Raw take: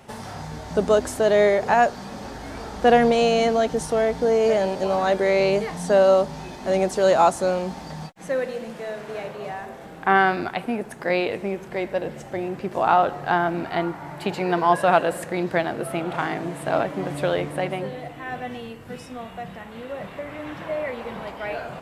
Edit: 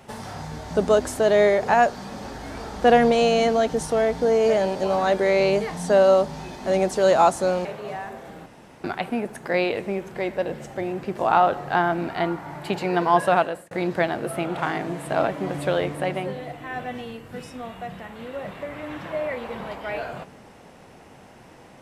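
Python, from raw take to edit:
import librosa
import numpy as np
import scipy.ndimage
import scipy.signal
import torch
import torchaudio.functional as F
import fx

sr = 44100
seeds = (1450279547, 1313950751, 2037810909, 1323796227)

y = fx.edit(x, sr, fx.cut(start_s=7.65, length_s=1.56),
    fx.room_tone_fill(start_s=10.02, length_s=0.38),
    fx.fade_out_span(start_s=14.85, length_s=0.42), tone=tone)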